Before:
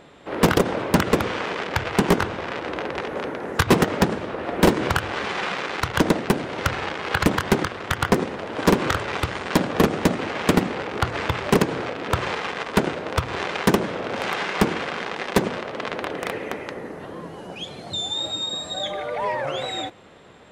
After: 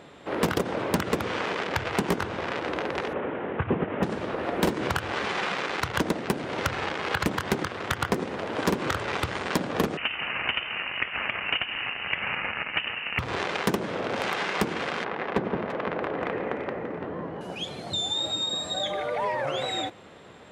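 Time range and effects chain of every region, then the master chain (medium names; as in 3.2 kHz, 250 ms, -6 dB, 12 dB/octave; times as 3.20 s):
3.13–4.03 s: CVSD coder 16 kbps + high-pass 55 Hz + distance through air 170 m
9.97–13.19 s: high-pass 500 Hz + frequency inversion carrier 3.3 kHz
15.04–17.41 s: low-pass 2 kHz + hard clipper -12 dBFS + echo whose repeats swap between lows and highs 169 ms, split 980 Hz, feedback 58%, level -5.5 dB
whole clip: high-pass 56 Hz; compression 2.5:1, threshold -25 dBFS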